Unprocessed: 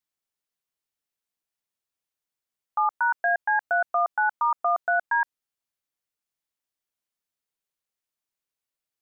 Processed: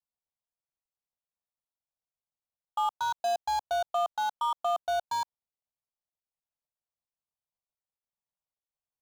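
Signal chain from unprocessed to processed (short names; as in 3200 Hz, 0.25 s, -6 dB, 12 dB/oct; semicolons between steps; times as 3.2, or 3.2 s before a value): median filter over 25 samples; vocal rider; fixed phaser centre 800 Hz, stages 4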